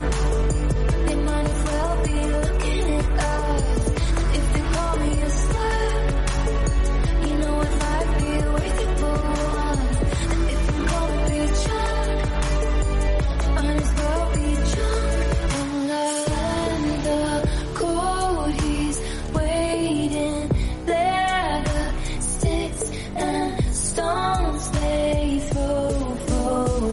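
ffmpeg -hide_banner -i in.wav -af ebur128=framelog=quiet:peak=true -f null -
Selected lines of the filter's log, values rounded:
Integrated loudness:
  I:         -23.2 LUFS
  Threshold: -33.2 LUFS
Loudness range:
  LRA:         0.7 LU
  Threshold: -43.2 LUFS
  LRA low:   -23.6 LUFS
  LRA high:  -22.9 LUFS
True peak:
  Peak:      -11.1 dBFS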